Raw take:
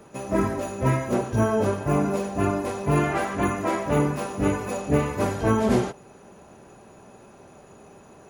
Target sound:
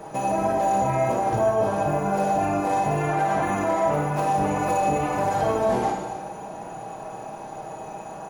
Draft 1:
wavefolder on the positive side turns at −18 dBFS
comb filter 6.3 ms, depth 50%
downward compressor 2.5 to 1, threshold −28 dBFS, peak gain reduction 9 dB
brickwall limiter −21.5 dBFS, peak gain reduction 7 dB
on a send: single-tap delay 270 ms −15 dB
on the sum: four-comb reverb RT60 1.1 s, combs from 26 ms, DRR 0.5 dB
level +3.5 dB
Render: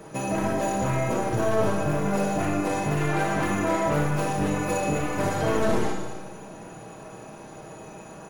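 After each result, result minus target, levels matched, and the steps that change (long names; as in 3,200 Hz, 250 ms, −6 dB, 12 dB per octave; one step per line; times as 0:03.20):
wavefolder on the positive side: distortion +22 dB; 1,000 Hz band −4.5 dB
change: wavefolder on the positive side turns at −11.5 dBFS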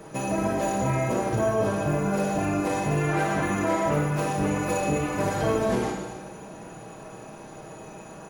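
1,000 Hz band −4.5 dB
add after downward compressor: parametric band 780 Hz +12 dB 0.75 octaves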